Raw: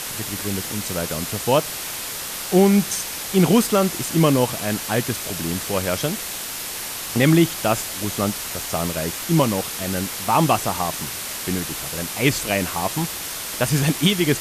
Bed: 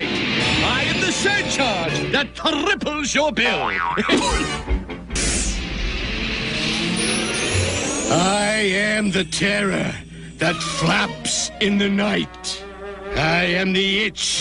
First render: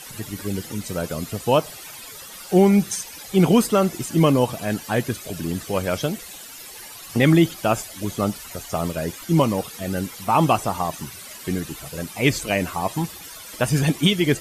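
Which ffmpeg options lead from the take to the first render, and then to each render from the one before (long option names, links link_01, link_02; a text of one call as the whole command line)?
ffmpeg -i in.wav -af "afftdn=noise_reduction=14:noise_floor=-30" out.wav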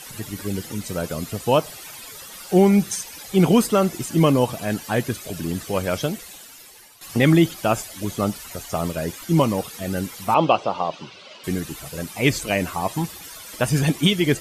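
ffmpeg -i in.wav -filter_complex "[0:a]asettb=1/sr,asplit=3[link_01][link_02][link_03];[link_01]atrim=end=10.344[link_04];[link_02]atrim=start=10.34:end=11.44,asetpts=PTS-STARTPTS,afade=type=in:duration=0.004:curve=qsin,afade=type=out:start_time=1.096:duration=0.004:curve=qsin,highpass=200,equalizer=frequency=240:width_type=q:width=4:gain=-4,equalizer=frequency=540:width_type=q:width=4:gain=7,equalizer=frequency=1800:width_type=q:width=4:gain=-9,equalizer=frequency=2900:width_type=q:width=4:gain=4,lowpass=frequency=4600:width=0.5412,lowpass=frequency=4600:width=1.3066[link_05];[link_03]atrim=start=11.436[link_06];[link_04][link_05]acrossfade=duration=0.004:curve1=hsin:curve2=qsin[link_07];[link_07][link_06]acrossfade=duration=0.004:curve1=qsin:curve2=hsin,asplit=2[link_08][link_09];[link_08]atrim=end=7.01,asetpts=PTS-STARTPTS,afade=type=out:start_time=6.05:duration=0.96:silence=0.223872[link_10];[link_09]atrim=start=7.01,asetpts=PTS-STARTPTS,afade=type=in:duration=0.004:curve=hsin:silence=0.223872[link_11];[link_10][link_11]concat=n=2:v=0:a=1" out.wav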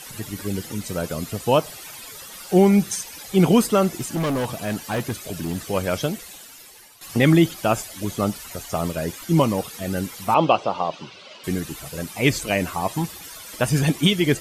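ffmpeg -i in.wav -filter_complex "[0:a]asettb=1/sr,asplit=3[link_01][link_02][link_03];[link_01]atrim=end=3.964[link_04];[link_02]atrim=start=3.96:end=5.58,asetpts=PTS-STARTPTS,afade=type=in:duration=0.004:curve=qsin,afade=type=out:start_time=1.616:duration=0.004:curve=qsin,asoftclip=type=hard:threshold=-20.5dB[link_05];[link_03]atrim=start=5.576[link_06];[link_04][link_05]acrossfade=duration=0.004:curve1=hsin:curve2=qsin[link_07];[link_07][link_06]acrossfade=duration=0.004:curve1=qsin:curve2=hsin" out.wav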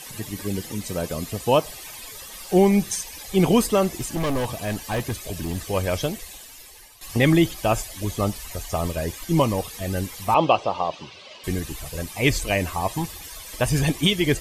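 ffmpeg -i in.wav -af "bandreject=frequency=1400:width=6.9,asubboost=boost=6:cutoff=67" out.wav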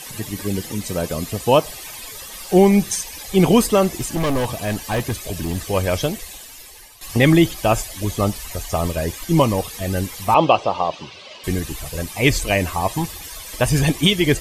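ffmpeg -i in.wav -af "volume=4dB,alimiter=limit=-1dB:level=0:latency=1" out.wav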